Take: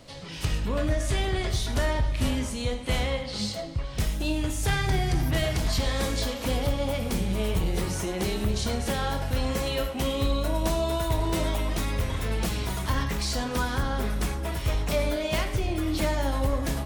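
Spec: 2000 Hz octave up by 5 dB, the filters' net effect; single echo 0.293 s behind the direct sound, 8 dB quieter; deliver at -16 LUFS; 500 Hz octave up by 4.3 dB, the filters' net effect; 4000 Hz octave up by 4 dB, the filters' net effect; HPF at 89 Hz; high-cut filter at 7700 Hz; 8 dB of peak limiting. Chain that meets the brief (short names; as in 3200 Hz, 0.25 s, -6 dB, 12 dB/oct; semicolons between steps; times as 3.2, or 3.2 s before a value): HPF 89 Hz; LPF 7700 Hz; bell 500 Hz +5 dB; bell 2000 Hz +5 dB; bell 4000 Hz +3.5 dB; limiter -19 dBFS; echo 0.293 s -8 dB; gain +12 dB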